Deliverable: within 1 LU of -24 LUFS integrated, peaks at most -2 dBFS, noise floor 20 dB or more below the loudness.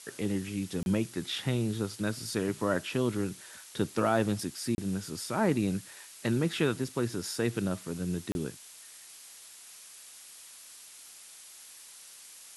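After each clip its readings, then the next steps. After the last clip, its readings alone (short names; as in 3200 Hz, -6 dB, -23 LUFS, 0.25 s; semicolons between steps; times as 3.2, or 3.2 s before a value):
dropouts 3; longest dropout 31 ms; noise floor -51 dBFS; noise floor target -52 dBFS; loudness -32.0 LUFS; peak -13.0 dBFS; loudness target -24.0 LUFS
-> interpolate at 0.83/4.75/8.32, 31 ms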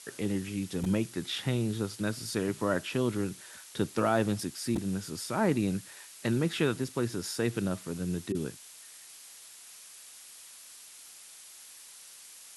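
dropouts 0; noise floor -51 dBFS; noise floor target -52 dBFS
-> noise print and reduce 6 dB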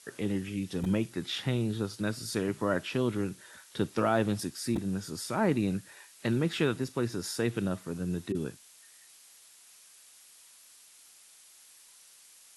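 noise floor -57 dBFS; loudness -32.0 LUFS; peak -13.0 dBFS; loudness target -24.0 LUFS
-> gain +8 dB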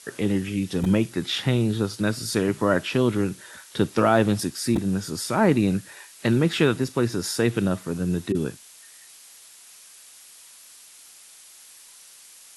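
loudness -24.0 LUFS; peak -5.0 dBFS; noise floor -49 dBFS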